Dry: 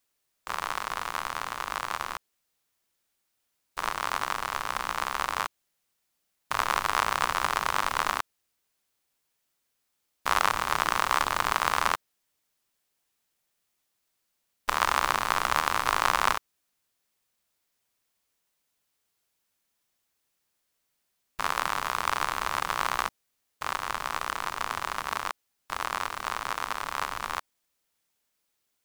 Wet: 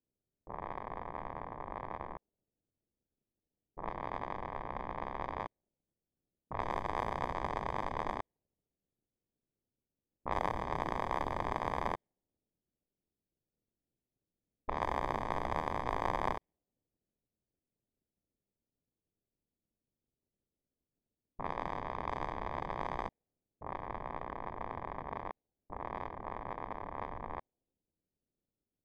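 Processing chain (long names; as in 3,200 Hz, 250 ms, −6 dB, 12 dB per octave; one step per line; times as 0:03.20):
surface crackle 110 per second −61 dBFS
moving average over 32 samples
low-pass that shuts in the quiet parts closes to 390 Hz, open at −31.5 dBFS
level +1 dB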